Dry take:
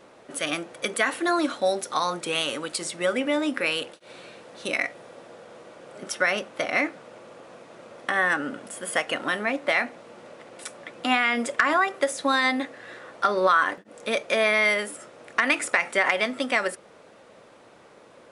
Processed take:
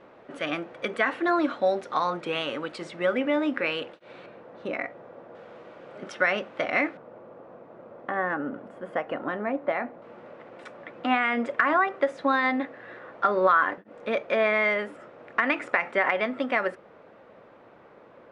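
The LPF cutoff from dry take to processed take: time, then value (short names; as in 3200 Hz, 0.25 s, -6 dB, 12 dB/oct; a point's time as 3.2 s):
2400 Hz
from 4.26 s 1400 Hz
from 5.35 s 2800 Hz
from 6.97 s 1100 Hz
from 10.02 s 2000 Hz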